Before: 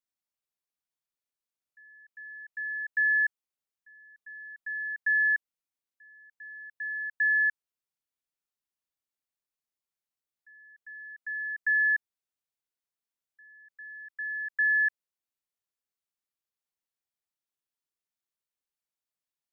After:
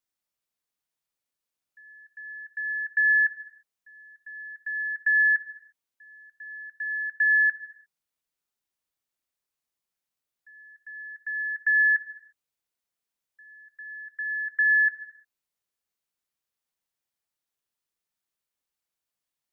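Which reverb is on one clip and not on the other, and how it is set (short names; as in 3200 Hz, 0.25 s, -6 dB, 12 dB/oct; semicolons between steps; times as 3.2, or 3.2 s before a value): non-linear reverb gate 0.37 s falling, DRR 10.5 dB; gain +4 dB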